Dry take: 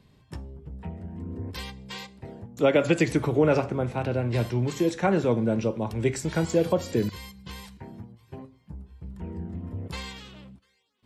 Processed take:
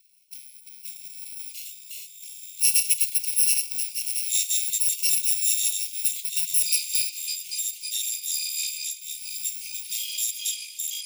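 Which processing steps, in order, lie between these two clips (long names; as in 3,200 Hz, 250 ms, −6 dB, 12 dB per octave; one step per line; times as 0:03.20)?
samples in bit-reversed order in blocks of 128 samples
delay with pitch and tempo change per echo 381 ms, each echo −7 semitones, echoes 3, each echo −6 dB
Butterworth high-pass 2,200 Hz 96 dB per octave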